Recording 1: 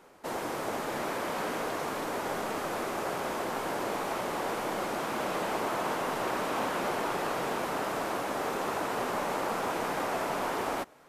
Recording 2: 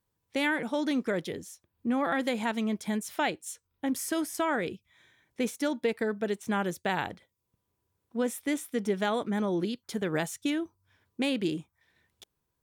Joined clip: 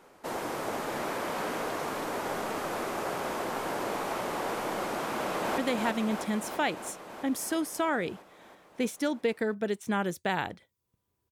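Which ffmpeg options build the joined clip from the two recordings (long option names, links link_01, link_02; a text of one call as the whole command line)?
ffmpeg -i cue0.wav -i cue1.wav -filter_complex "[0:a]apad=whole_dur=11.31,atrim=end=11.31,atrim=end=5.582[link_01];[1:a]atrim=start=2.178:end=7.91[link_02];[link_01][link_02]acrossfade=duration=0.004:curve1=hsin:curve2=hsin,asplit=2[link_03][link_04];[link_04]afade=type=in:start_time=5.11:duration=0.01,afade=type=out:start_time=5.58:duration=0.01,aecho=0:1:330|660|990|1320|1650|1980|2310|2640|2970|3300|3630|3960:0.630957|0.473218|0.354914|0.266185|0.199639|0.149729|0.112297|0.0842226|0.063167|0.0473752|0.0355314|0.0266486[link_05];[link_03][link_05]amix=inputs=2:normalize=0" out.wav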